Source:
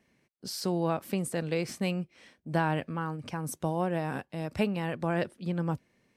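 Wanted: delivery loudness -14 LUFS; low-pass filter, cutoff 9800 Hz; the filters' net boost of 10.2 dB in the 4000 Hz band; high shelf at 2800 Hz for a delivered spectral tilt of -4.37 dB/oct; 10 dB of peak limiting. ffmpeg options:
-af "lowpass=9.8k,highshelf=f=2.8k:g=5.5,equalizer=f=4k:t=o:g=9,volume=19.5dB,alimiter=limit=-2dB:level=0:latency=1"

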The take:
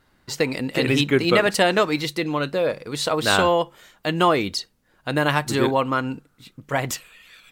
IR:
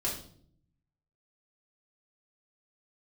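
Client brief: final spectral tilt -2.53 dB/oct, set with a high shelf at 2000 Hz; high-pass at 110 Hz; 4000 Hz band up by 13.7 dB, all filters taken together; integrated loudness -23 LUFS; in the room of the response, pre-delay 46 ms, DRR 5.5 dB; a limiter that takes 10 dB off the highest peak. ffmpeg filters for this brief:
-filter_complex "[0:a]highpass=110,highshelf=f=2k:g=8.5,equalizer=f=4k:t=o:g=8.5,alimiter=limit=-4.5dB:level=0:latency=1,asplit=2[a][b];[1:a]atrim=start_sample=2205,adelay=46[c];[b][c]afir=irnorm=-1:irlink=0,volume=-10.5dB[d];[a][d]amix=inputs=2:normalize=0,volume=-6.5dB"

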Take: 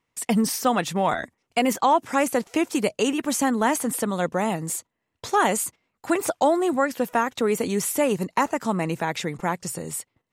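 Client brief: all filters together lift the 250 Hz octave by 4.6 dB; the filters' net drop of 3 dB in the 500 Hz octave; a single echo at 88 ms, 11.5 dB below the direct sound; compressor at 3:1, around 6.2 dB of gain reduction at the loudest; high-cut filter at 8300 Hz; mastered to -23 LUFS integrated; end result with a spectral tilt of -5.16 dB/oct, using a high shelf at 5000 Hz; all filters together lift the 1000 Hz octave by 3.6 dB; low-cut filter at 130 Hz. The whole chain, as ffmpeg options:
-af "highpass=130,lowpass=8.3k,equalizer=f=250:t=o:g=8,equalizer=f=500:t=o:g=-8.5,equalizer=f=1k:t=o:g=7,highshelf=f=5k:g=-5.5,acompressor=threshold=-20dB:ratio=3,aecho=1:1:88:0.266,volume=2dB"

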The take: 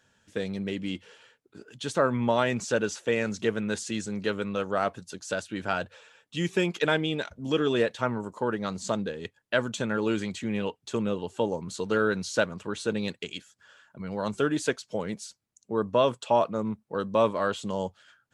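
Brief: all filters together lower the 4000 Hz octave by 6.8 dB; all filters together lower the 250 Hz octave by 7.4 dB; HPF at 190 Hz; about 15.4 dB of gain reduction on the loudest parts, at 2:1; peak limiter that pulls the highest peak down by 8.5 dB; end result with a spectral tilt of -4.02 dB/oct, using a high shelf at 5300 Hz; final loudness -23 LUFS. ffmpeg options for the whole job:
-af "highpass=190,equalizer=f=250:t=o:g=-8,equalizer=f=4k:t=o:g=-7.5,highshelf=f=5.3k:g=-4,acompressor=threshold=-49dB:ratio=2,volume=23.5dB,alimiter=limit=-9.5dB:level=0:latency=1"

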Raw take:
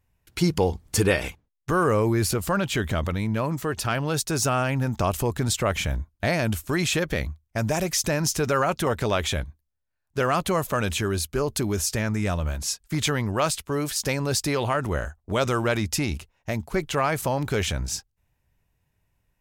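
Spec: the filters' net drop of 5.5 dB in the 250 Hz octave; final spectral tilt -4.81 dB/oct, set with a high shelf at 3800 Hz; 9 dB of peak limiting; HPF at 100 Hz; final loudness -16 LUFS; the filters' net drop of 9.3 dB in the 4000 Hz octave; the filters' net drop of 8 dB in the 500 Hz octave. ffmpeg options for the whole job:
-af "highpass=100,equalizer=f=250:t=o:g=-5,equalizer=f=500:t=o:g=-8.5,highshelf=f=3.8k:g=-6.5,equalizer=f=4k:t=o:g=-8,volume=17dB,alimiter=limit=-5.5dB:level=0:latency=1"

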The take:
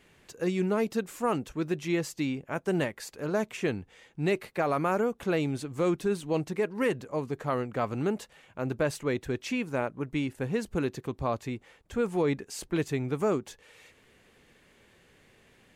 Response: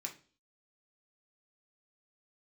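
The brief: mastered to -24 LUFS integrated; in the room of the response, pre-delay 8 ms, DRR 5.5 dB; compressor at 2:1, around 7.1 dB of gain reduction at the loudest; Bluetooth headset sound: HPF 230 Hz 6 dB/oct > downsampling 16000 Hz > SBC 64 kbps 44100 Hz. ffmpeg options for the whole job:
-filter_complex "[0:a]acompressor=threshold=-36dB:ratio=2,asplit=2[a][b];[1:a]atrim=start_sample=2205,adelay=8[c];[b][c]afir=irnorm=-1:irlink=0,volume=-4dB[d];[a][d]amix=inputs=2:normalize=0,highpass=f=230:p=1,aresample=16000,aresample=44100,volume=13.5dB" -ar 44100 -c:a sbc -b:a 64k

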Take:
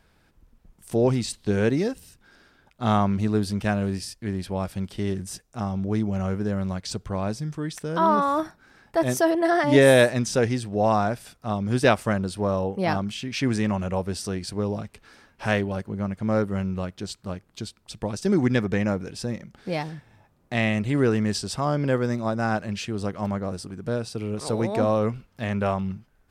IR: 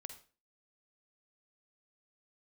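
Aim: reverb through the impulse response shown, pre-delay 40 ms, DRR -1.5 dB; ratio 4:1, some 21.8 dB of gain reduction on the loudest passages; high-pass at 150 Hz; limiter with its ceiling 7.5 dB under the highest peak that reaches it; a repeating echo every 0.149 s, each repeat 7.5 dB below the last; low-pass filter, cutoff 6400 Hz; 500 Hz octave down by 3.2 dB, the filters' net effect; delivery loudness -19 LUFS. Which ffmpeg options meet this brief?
-filter_complex "[0:a]highpass=150,lowpass=6.4k,equalizer=f=500:t=o:g=-4,acompressor=threshold=-41dB:ratio=4,alimiter=level_in=7dB:limit=-24dB:level=0:latency=1,volume=-7dB,aecho=1:1:149|298|447|596|745:0.422|0.177|0.0744|0.0312|0.0131,asplit=2[a][b];[1:a]atrim=start_sample=2205,adelay=40[c];[b][c]afir=irnorm=-1:irlink=0,volume=6.5dB[d];[a][d]amix=inputs=2:normalize=0,volume=20dB"

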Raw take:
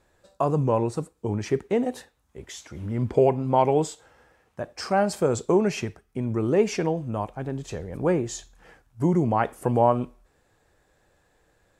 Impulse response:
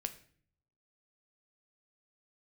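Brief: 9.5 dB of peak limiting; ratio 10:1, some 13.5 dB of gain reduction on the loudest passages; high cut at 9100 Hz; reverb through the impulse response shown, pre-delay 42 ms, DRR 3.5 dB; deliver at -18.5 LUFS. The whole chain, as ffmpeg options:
-filter_complex "[0:a]lowpass=9.1k,acompressor=threshold=-28dB:ratio=10,alimiter=level_in=1.5dB:limit=-24dB:level=0:latency=1,volume=-1.5dB,asplit=2[a][b];[1:a]atrim=start_sample=2205,adelay=42[c];[b][c]afir=irnorm=-1:irlink=0,volume=-2.5dB[d];[a][d]amix=inputs=2:normalize=0,volume=16.5dB"

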